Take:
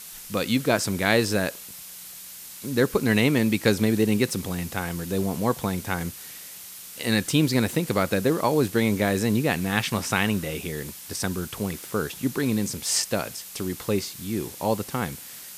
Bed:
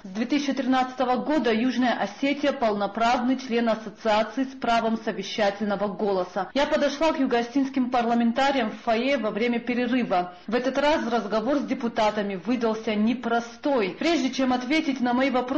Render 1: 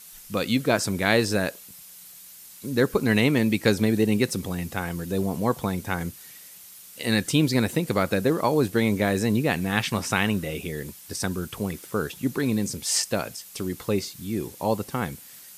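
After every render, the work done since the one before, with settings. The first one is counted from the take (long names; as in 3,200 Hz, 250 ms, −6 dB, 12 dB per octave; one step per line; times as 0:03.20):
broadband denoise 7 dB, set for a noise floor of −42 dBFS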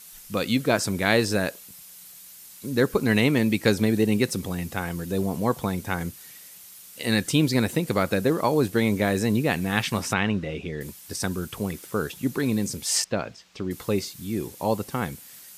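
0:10.13–0:10.81: high-frequency loss of the air 150 metres
0:13.04–0:13.71: high-frequency loss of the air 170 metres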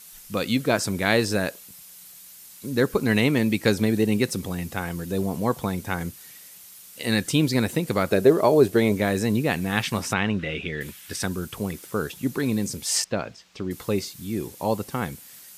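0:08.11–0:08.92: hollow resonant body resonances 400/620 Hz, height 11 dB
0:10.39–0:11.24: flat-topped bell 2,200 Hz +8.5 dB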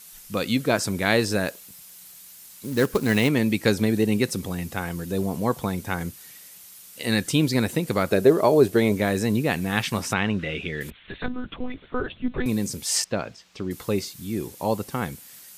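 0:01.48–0:03.29: floating-point word with a short mantissa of 2 bits
0:10.90–0:12.46: one-pitch LPC vocoder at 8 kHz 250 Hz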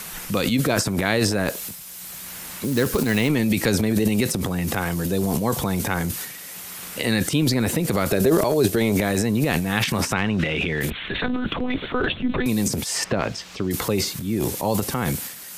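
transient designer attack −1 dB, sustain +12 dB
multiband upward and downward compressor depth 70%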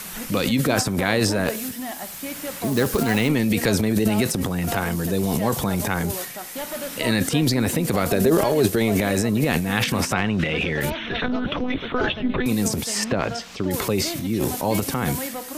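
mix in bed −9.5 dB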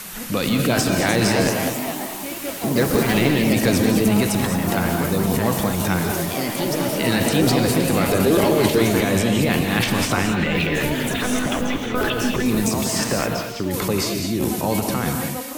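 delay with pitch and tempo change per echo 426 ms, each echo +3 semitones, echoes 3, each echo −6 dB
reverb whose tail is shaped and stops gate 240 ms rising, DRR 4 dB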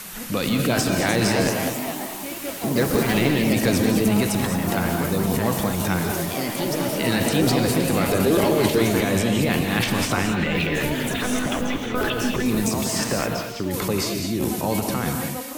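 level −2 dB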